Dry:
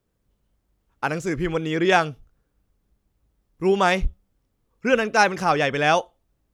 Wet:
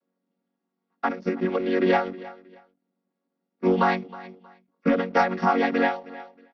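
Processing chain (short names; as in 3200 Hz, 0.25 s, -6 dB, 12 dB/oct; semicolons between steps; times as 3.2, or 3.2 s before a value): chord vocoder major triad, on F#3; HPF 220 Hz 12 dB/oct; sample leveller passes 1; compressor, threshold -17 dBFS, peak gain reduction 7 dB; rippled Chebyshev low-pass 5800 Hz, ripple 3 dB; feedback echo 0.316 s, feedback 28%, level -19 dB; ending taper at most 140 dB/s; gain +3 dB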